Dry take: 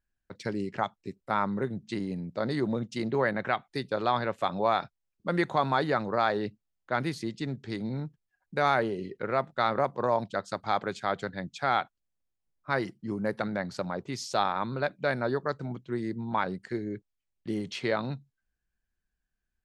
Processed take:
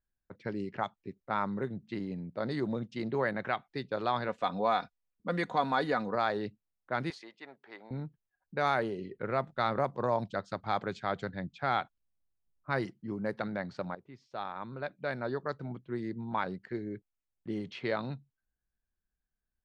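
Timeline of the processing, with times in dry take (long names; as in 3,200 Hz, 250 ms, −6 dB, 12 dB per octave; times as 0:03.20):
0:04.28–0:06.15: comb filter 4.1 ms, depth 53%
0:07.10–0:07.91: high-pass with resonance 790 Hz, resonance Q 1.6
0:09.12–0:12.86: low-shelf EQ 170 Hz +7 dB
0:13.95–0:15.66: fade in, from −14 dB
whole clip: low-pass that shuts in the quiet parts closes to 1,500 Hz, open at −22 dBFS; level −4 dB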